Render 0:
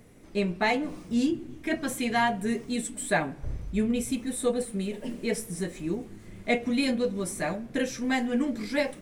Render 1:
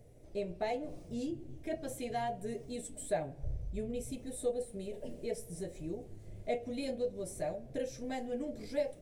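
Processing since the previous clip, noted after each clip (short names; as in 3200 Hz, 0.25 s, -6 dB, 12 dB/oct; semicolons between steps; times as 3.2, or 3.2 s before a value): EQ curve 140 Hz 0 dB, 200 Hz -14 dB, 620 Hz +1 dB, 1100 Hz -18 dB, 5500 Hz -9 dB; in parallel at -0.5 dB: compressor, threshold -38 dBFS, peak gain reduction 14.5 dB; on the sum: gain -6.5 dB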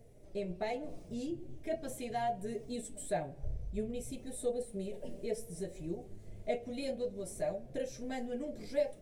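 flange 1.1 Hz, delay 4.3 ms, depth 1.4 ms, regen +60%; gain +4 dB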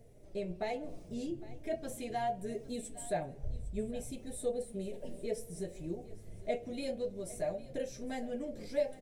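echo 0.807 s -18.5 dB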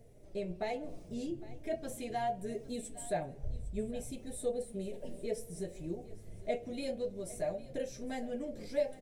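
nothing audible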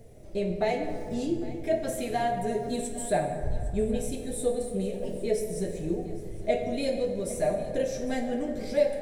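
plate-style reverb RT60 2.2 s, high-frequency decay 0.45×, DRR 4 dB; gain +8 dB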